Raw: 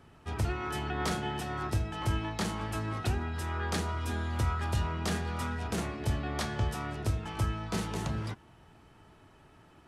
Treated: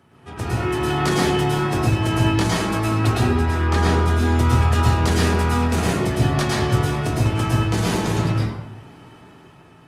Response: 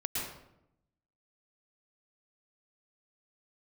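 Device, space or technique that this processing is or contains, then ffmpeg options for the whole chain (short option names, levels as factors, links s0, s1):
far-field microphone of a smart speaker: -filter_complex "[0:a]asettb=1/sr,asplit=3[s0][s1][s2];[s0]atrim=end=3.394[s3];[s1]atrim=start=3.39:end=4.08,asetpts=PTS-STARTPTS,afade=t=in:d=0.004:c=qsin,afade=t=out:st=0.686:d=0.004:c=qsin,aemphasis=mode=reproduction:type=cd[s4];[s2]atrim=start=4.076[s5];[s3][s4]acrossfade=d=0.004:c1=hsin:c2=qsin[s6];[s6][s5]acrossfade=d=0.004:c1=qsin:c2=hsin[s7];[1:a]atrim=start_sample=2205[s8];[s7][s8]afir=irnorm=-1:irlink=0,highpass=110,dynaudnorm=f=170:g=9:m=1.78,volume=1.68" -ar 48000 -c:a libopus -b:a 32k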